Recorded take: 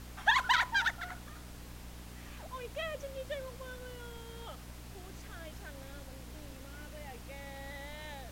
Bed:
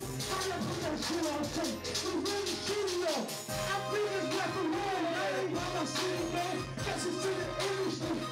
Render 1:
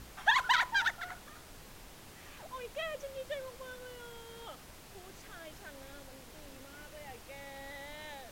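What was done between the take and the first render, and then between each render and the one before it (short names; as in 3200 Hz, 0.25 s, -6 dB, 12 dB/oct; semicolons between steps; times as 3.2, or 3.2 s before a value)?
de-hum 60 Hz, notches 5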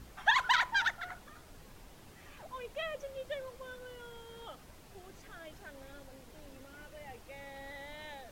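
denoiser 6 dB, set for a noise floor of -53 dBFS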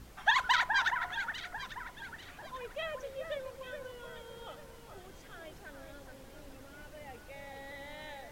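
echo with dull and thin repeats by turns 0.422 s, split 2000 Hz, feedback 57%, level -6 dB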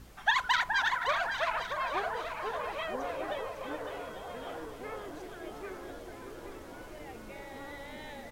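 on a send: feedback echo 0.556 s, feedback 45%, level -8 dB; on the sum: echoes that change speed 0.665 s, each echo -7 st, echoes 3, each echo -6 dB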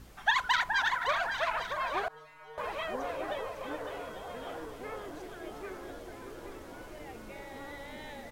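2.08–2.58 metallic resonator 150 Hz, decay 0.68 s, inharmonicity 0.002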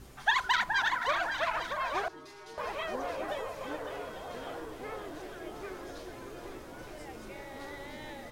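add bed -19 dB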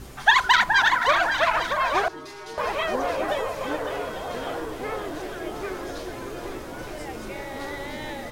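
gain +10 dB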